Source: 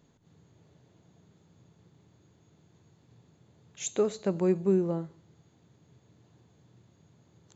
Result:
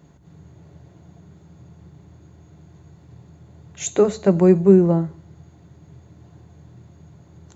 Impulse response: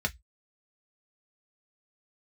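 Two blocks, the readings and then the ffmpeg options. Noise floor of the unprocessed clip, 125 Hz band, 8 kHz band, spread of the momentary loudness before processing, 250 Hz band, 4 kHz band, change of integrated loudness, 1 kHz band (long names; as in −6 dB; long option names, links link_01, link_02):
−65 dBFS, +14.0 dB, can't be measured, 11 LU, +13.0 dB, +6.0 dB, +12.0 dB, +11.5 dB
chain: -filter_complex "[0:a]asplit=2[link_01][link_02];[1:a]atrim=start_sample=2205,asetrate=48510,aresample=44100,lowshelf=frequency=320:gain=7[link_03];[link_02][link_03]afir=irnorm=-1:irlink=0,volume=-12dB[link_04];[link_01][link_04]amix=inputs=2:normalize=0,volume=9dB"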